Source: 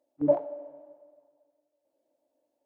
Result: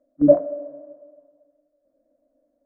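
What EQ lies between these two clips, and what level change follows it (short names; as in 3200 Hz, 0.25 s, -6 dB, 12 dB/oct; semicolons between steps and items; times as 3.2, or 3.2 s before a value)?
tilt -4 dB/oct; fixed phaser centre 580 Hz, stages 8; +6.0 dB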